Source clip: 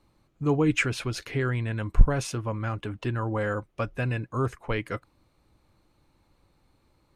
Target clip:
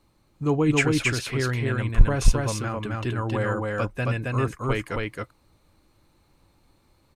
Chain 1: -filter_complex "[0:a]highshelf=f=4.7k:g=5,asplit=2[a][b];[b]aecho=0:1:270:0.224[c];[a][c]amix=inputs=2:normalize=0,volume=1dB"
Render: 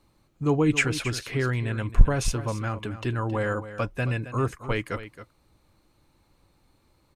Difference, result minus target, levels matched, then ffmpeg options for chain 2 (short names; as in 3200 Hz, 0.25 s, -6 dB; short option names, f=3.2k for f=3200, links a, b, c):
echo-to-direct -11 dB
-filter_complex "[0:a]highshelf=f=4.7k:g=5,asplit=2[a][b];[b]aecho=0:1:270:0.794[c];[a][c]amix=inputs=2:normalize=0,volume=1dB"